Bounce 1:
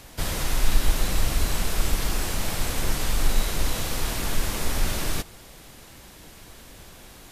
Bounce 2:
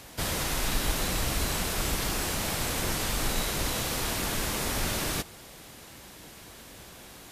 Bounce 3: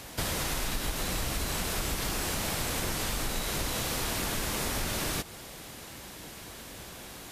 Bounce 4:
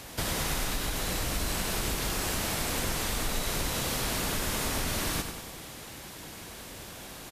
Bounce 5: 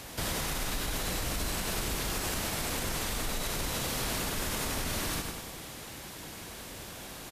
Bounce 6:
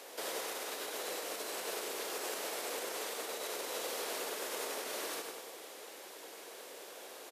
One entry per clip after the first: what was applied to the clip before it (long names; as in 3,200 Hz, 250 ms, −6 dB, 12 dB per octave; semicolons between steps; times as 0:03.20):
high-pass filter 93 Hz 6 dB per octave
downward compressor, threshold −31 dBFS, peak gain reduction 9.5 dB; level +3 dB
repeating echo 96 ms, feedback 59%, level −8 dB
brickwall limiter −23 dBFS, peak gain reduction 5.5 dB
four-pole ladder high-pass 380 Hz, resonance 50%; level +3 dB